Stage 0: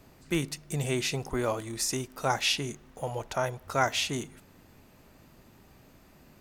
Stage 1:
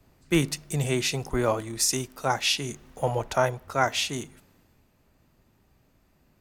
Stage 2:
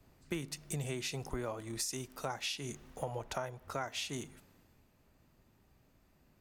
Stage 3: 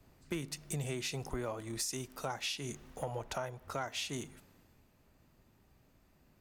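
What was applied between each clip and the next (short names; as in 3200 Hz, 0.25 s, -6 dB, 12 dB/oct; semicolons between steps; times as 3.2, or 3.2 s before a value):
vocal rider within 5 dB 0.5 s; three-band expander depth 40%; gain +3 dB
compressor 8:1, threshold -31 dBFS, peak gain reduction 14.5 dB; gain -4 dB
soft clip -25.5 dBFS, distortion -23 dB; gain +1 dB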